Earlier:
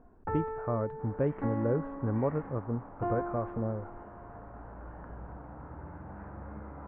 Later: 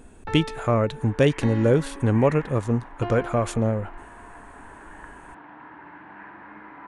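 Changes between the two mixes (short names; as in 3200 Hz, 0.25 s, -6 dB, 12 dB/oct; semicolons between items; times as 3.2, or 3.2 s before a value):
speech +10.5 dB; second sound: add speaker cabinet 260–2700 Hz, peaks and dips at 310 Hz +6 dB, 530 Hz -8 dB, 980 Hz +9 dB, 1700 Hz +9 dB; master: remove inverse Chebyshev low-pass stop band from 7600 Hz, stop band 80 dB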